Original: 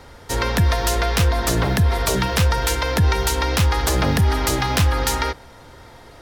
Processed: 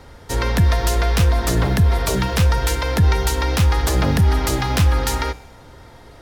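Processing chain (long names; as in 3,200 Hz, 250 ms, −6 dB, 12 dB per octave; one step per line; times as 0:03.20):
low-shelf EQ 370 Hz +4.5 dB
tuned comb filter 60 Hz, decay 1 s, harmonics odd, mix 50%
level +3.5 dB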